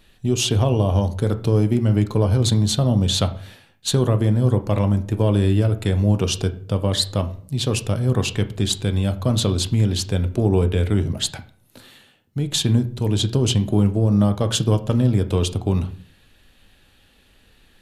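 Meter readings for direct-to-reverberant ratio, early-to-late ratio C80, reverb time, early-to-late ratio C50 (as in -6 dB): 8.5 dB, 19.5 dB, 0.50 s, 15.0 dB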